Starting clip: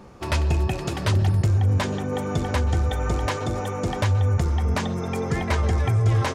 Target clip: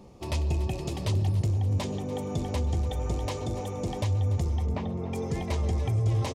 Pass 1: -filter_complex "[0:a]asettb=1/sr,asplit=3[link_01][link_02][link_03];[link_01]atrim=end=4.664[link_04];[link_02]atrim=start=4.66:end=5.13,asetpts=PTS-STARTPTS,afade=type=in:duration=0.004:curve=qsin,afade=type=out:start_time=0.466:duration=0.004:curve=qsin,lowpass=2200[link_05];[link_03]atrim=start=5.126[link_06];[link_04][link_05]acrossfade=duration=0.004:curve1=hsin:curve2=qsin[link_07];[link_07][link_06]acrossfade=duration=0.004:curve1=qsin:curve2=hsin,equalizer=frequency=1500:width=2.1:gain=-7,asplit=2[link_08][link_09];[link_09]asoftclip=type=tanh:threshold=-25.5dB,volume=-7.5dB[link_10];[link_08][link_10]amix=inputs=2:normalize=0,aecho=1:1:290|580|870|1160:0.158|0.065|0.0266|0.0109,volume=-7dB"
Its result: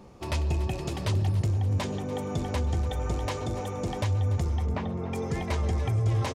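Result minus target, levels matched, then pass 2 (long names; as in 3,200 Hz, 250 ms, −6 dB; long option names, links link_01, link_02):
2,000 Hz band +4.0 dB
-filter_complex "[0:a]asettb=1/sr,asplit=3[link_01][link_02][link_03];[link_01]atrim=end=4.664[link_04];[link_02]atrim=start=4.66:end=5.13,asetpts=PTS-STARTPTS,afade=type=in:duration=0.004:curve=qsin,afade=type=out:start_time=0.466:duration=0.004:curve=qsin,lowpass=2200[link_05];[link_03]atrim=start=5.126[link_06];[link_04][link_05]acrossfade=duration=0.004:curve1=hsin:curve2=qsin[link_07];[link_07][link_06]acrossfade=duration=0.004:curve1=qsin:curve2=hsin,equalizer=frequency=1500:width=2.1:gain=-17,asplit=2[link_08][link_09];[link_09]asoftclip=type=tanh:threshold=-25.5dB,volume=-7.5dB[link_10];[link_08][link_10]amix=inputs=2:normalize=0,aecho=1:1:290|580|870|1160:0.158|0.065|0.0266|0.0109,volume=-7dB"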